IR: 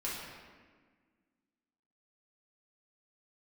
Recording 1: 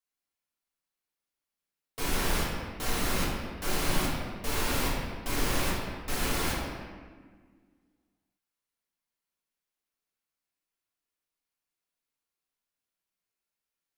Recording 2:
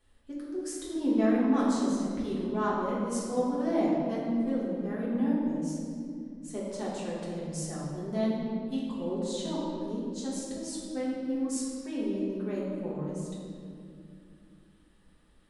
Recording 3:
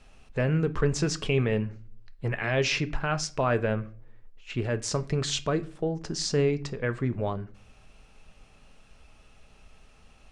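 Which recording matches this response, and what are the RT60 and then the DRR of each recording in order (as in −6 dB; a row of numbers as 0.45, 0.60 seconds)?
1; 1.5 s, 2.5 s, non-exponential decay; −7.5, −7.5, 10.5 decibels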